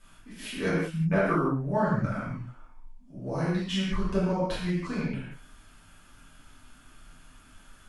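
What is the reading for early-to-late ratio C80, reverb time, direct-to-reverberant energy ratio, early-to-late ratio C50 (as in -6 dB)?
1.5 dB, no single decay rate, -11.0 dB, -1.0 dB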